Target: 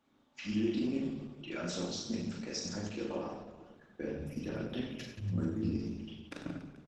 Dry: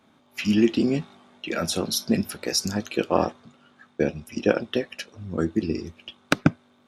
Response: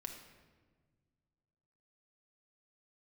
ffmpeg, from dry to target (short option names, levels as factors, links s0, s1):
-filter_complex "[0:a]asplit=3[s0][s1][s2];[s0]afade=t=out:st=4.15:d=0.02[s3];[s1]asubboost=boost=4:cutoff=220,afade=t=in:st=4.15:d=0.02,afade=t=out:st=5.82:d=0.02[s4];[s2]afade=t=in:st=5.82:d=0.02[s5];[s3][s4][s5]amix=inputs=3:normalize=0,alimiter=limit=0.2:level=0:latency=1:release=65,aecho=1:1:40|96|174.4|284.2|437.8:0.631|0.398|0.251|0.158|0.1[s6];[1:a]atrim=start_sample=2205,asetrate=61740,aresample=44100[s7];[s6][s7]afir=irnorm=-1:irlink=0,volume=0.447" -ar 48000 -c:a libopus -b:a 12k